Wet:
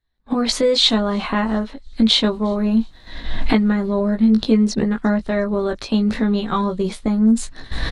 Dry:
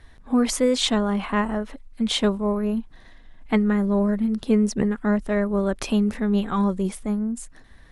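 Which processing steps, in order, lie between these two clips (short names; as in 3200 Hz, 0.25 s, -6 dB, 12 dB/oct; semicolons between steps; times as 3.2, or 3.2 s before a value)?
recorder AGC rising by 35 dB/s; expander -23 dBFS; bell 4100 Hz +11.5 dB 0.47 oct; 2.06–3.98 requantised 10-bit, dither none; air absorption 62 m; doubler 18 ms -5 dB; on a send: thin delay 0.354 s, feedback 43%, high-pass 5300 Hz, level -24 dB; on the sum: gain +1.5 dB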